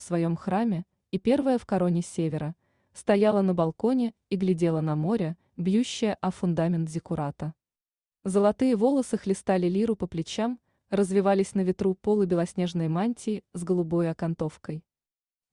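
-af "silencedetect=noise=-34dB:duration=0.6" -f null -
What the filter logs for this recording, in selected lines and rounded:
silence_start: 7.50
silence_end: 8.26 | silence_duration: 0.76
silence_start: 14.78
silence_end: 15.52 | silence_duration: 0.74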